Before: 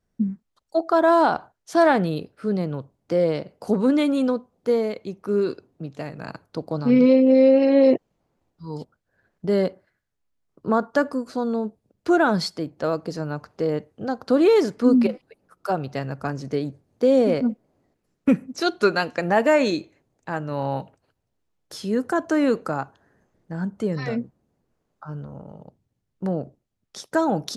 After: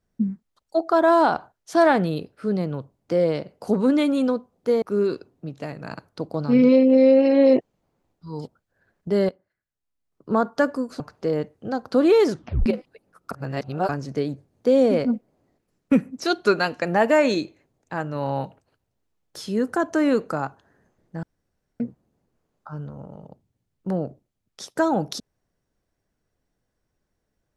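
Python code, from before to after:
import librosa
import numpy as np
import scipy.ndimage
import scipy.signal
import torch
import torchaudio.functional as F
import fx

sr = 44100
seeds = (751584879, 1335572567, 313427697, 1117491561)

y = fx.edit(x, sr, fx.cut(start_s=4.82, length_s=0.37),
    fx.fade_in_from(start_s=9.66, length_s=1.03, curve='qua', floor_db=-13.5),
    fx.cut(start_s=11.37, length_s=1.99),
    fx.tape_stop(start_s=14.67, length_s=0.35),
    fx.reverse_span(start_s=15.67, length_s=0.58),
    fx.room_tone_fill(start_s=23.59, length_s=0.57), tone=tone)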